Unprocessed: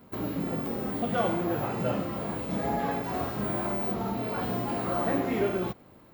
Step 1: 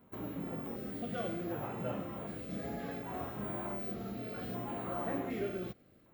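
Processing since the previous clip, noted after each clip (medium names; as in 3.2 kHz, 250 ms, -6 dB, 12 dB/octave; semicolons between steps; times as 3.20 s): LFO notch square 0.66 Hz 940–5000 Hz; trim -9 dB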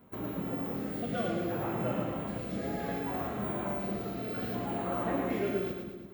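two-band feedback delay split 380 Hz, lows 172 ms, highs 111 ms, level -4.5 dB; trim +4 dB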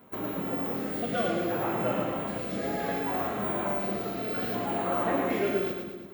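bass shelf 210 Hz -10.5 dB; trim +6.5 dB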